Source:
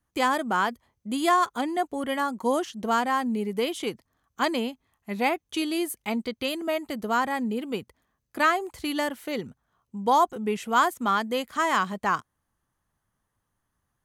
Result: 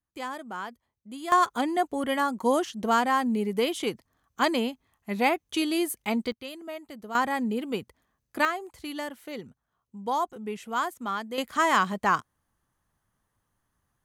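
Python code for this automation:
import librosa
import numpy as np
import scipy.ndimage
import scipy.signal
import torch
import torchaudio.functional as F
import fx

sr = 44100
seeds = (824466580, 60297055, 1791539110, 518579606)

y = fx.gain(x, sr, db=fx.steps((0.0, -11.5), (1.32, 1.0), (6.32, -10.5), (7.15, 0.0), (8.45, -7.0), (11.38, 1.5)))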